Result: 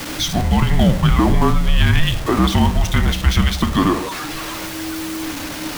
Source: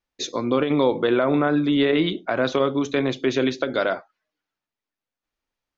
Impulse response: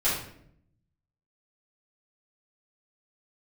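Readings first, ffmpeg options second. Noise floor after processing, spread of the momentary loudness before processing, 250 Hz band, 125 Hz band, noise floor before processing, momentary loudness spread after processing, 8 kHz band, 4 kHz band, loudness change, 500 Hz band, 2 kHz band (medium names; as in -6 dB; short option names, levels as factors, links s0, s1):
-28 dBFS, 5 LU, +4.0 dB, +16.0 dB, under -85 dBFS, 10 LU, no reading, +8.0 dB, +3.5 dB, -4.0 dB, +4.5 dB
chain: -filter_complex "[0:a]aeval=exprs='val(0)+0.5*0.0531*sgn(val(0))':c=same,asplit=2[s0][s1];[1:a]atrim=start_sample=2205,asetrate=25137,aresample=44100[s2];[s1][s2]afir=irnorm=-1:irlink=0,volume=0.0316[s3];[s0][s3]amix=inputs=2:normalize=0,afreqshift=-320,volume=1.68"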